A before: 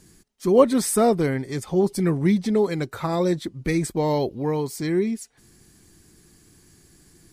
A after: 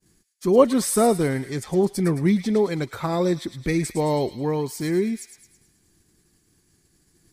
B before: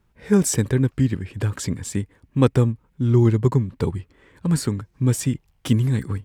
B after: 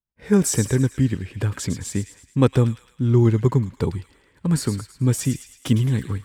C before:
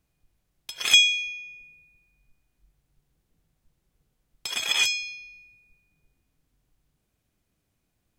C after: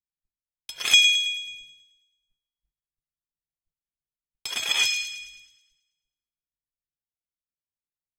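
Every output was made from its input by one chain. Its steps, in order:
downward expander −46 dBFS
on a send: delay with a high-pass on its return 108 ms, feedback 51%, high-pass 2,100 Hz, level −8 dB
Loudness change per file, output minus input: 0.0, 0.0, +0.5 LU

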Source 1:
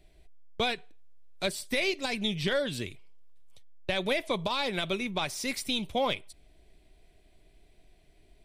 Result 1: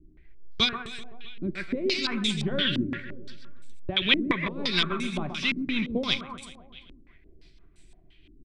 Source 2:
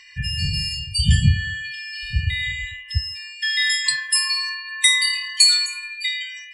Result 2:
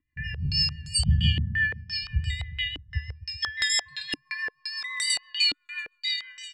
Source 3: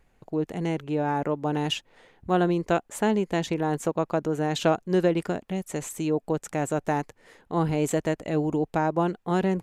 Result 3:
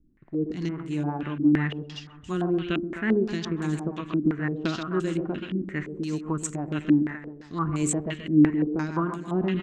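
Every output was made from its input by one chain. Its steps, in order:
flat-topped bell 620 Hz −13 dB 1.2 octaves
tuned comb filter 75 Hz, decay 0.77 s, harmonics all, mix 50%
amplitude tremolo 1.9 Hz, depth 30%
on a send: repeating echo 129 ms, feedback 60%, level −8.5 dB
on the sum: rotating-speaker cabinet horn 6 Hz
low-pass on a step sequencer 5.8 Hz 290–8,000 Hz
loudness normalisation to −27 LKFS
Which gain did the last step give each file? +11.5, +1.0, +6.0 decibels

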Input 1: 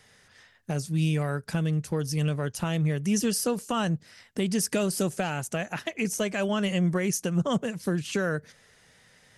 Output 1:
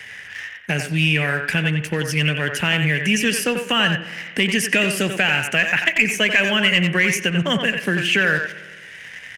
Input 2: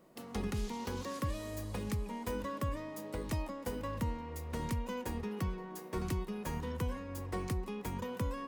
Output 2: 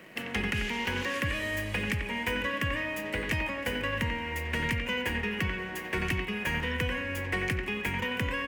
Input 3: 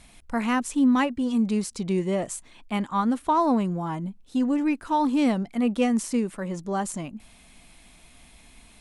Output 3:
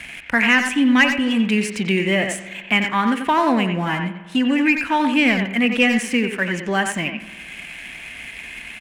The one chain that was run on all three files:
high-pass filter 43 Hz
flat-topped bell 2,200 Hz +16 dB 1.2 octaves
leveller curve on the samples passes 1
far-end echo of a speakerphone 90 ms, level −6 dB
spring reverb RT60 1.2 s, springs 52 ms, chirp 45 ms, DRR 14.5 dB
multiband upward and downward compressor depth 40%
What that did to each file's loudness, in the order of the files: +9.5, +8.5, +7.0 LU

